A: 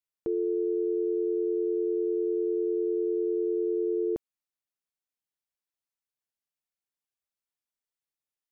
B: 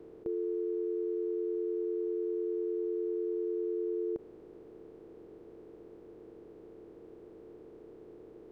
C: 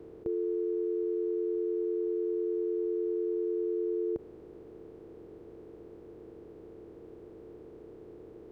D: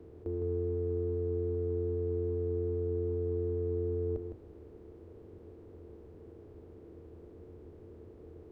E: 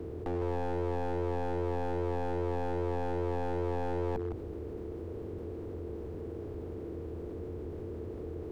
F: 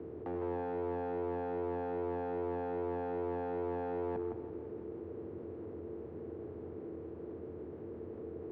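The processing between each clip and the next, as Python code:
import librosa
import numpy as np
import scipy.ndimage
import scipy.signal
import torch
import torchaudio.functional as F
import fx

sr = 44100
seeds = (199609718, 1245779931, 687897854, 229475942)

y1 = fx.bin_compress(x, sr, power=0.2)
y1 = F.gain(torch.from_numpy(y1), -6.0).numpy()
y2 = fx.peak_eq(y1, sr, hz=79.0, db=6.5, octaves=1.4)
y2 = F.gain(torch.from_numpy(y2), 2.0).numpy()
y3 = fx.octave_divider(y2, sr, octaves=2, level_db=3.0)
y3 = y3 + 10.0 ** (-6.5 / 20.0) * np.pad(y3, (int(159 * sr / 1000.0), 0))[:len(y3)]
y3 = F.gain(torch.from_numpy(y3), -5.0).numpy()
y4 = np.minimum(y3, 2.0 * 10.0 ** (-36.0 / 20.0) - y3)
y4 = fx.env_flatten(y4, sr, amount_pct=50)
y4 = F.gain(torch.from_numpy(y4), 2.5).numpy()
y5 = fx.bandpass_edges(y4, sr, low_hz=130.0, high_hz=2100.0)
y5 = fx.echo_feedback(y5, sr, ms=168, feedback_pct=56, wet_db=-11.5)
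y5 = F.gain(torch.from_numpy(y5), -3.5).numpy()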